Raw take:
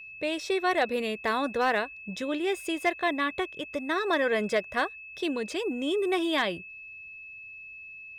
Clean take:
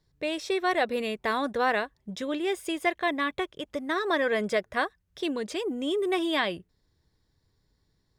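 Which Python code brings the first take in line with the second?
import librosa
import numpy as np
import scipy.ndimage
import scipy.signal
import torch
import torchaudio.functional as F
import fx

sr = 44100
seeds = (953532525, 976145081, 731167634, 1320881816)

y = fx.fix_declip(x, sr, threshold_db=-16.5)
y = fx.notch(y, sr, hz=2600.0, q=30.0)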